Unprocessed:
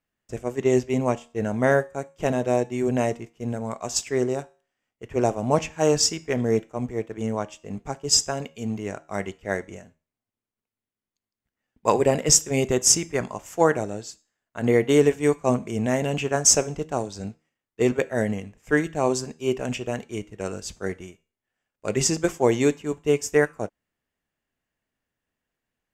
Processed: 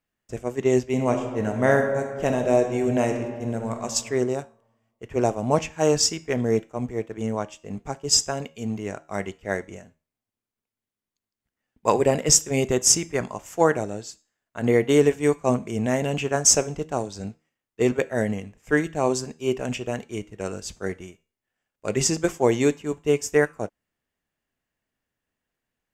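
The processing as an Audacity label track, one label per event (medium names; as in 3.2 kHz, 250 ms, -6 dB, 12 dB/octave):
0.860000	3.820000	reverb throw, RT60 1.6 s, DRR 4.5 dB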